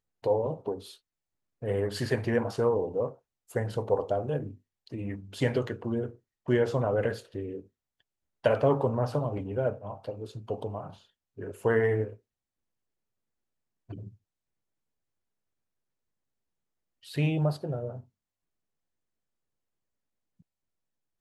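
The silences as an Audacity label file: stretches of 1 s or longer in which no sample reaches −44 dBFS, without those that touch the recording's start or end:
12.150000	13.900000	silence
14.090000	17.050000	silence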